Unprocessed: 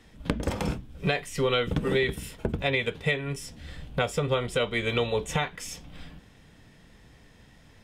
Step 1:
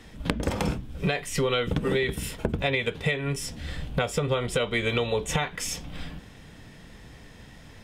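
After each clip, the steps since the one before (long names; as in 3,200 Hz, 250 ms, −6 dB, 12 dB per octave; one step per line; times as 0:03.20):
downward compressor 3 to 1, threshold −31 dBFS, peak gain reduction 8.5 dB
level +7 dB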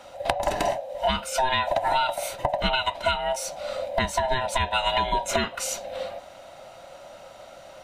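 neighbouring bands swapped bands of 500 Hz
level +2 dB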